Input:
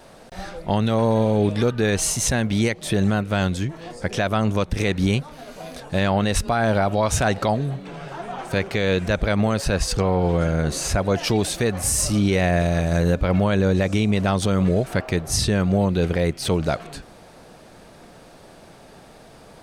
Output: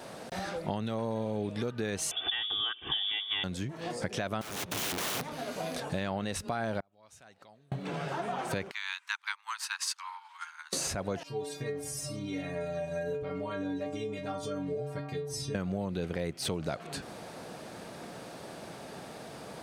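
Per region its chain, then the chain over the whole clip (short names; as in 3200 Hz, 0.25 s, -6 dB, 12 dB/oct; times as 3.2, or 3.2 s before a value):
2.11–3.44 inverted band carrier 3500 Hz + comb 2.6 ms, depth 68%
4.41–5.28 minimum comb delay 0.31 ms + wrapped overs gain 27 dB
6.8–7.72 flipped gate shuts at -19 dBFS, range -41 dB + mismatched tape noise reduction encoder only
8.71–10.73 steep high-pass 890 Hz 96 dB/oct + upward expander 2.5:1, over -40 dBFS
11.23–15.55 tilt -1.5 dB/oct + metallic resonator 140 Hz, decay 0.62 s, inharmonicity 0.008
whole clip: compressor, threshold -33 dBFS; HPF 110 Hz 12 dB/oct; gain +2 dB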